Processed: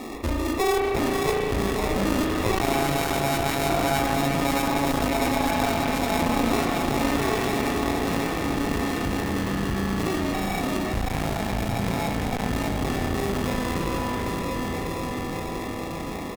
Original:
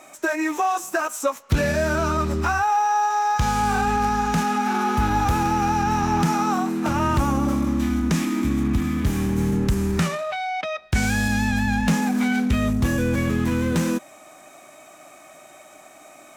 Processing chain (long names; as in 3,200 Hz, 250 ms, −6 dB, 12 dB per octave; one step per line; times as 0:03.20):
stylus tracing distortion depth 0.32 ms
low-pass filter 1,300 Hz 12 dB per octave
low shelf with overshoot 750 Hz −11.5 dB, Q 3
notch filter 910 Hz, Q 5.7
feedback delay with all-pass diffusion 594 ms, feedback 64%, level −5.5 dB
decimation without filtering 29×
double-tracking delay 21 ms −10.5 dB
spring reverb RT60 1.9 s, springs 35 ms, chirp 50 ms, DRR 2 dB
asymmetric clip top −28 dBFS
envelope flattener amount 50%